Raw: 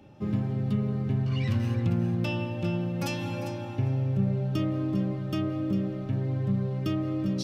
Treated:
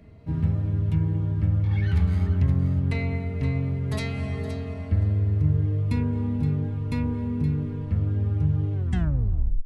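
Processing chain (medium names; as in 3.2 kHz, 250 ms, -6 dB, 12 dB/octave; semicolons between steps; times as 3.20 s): tape stop on the ending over 0.71 s; bass shelf 110 Hz +11.5 dB; tape speed -23%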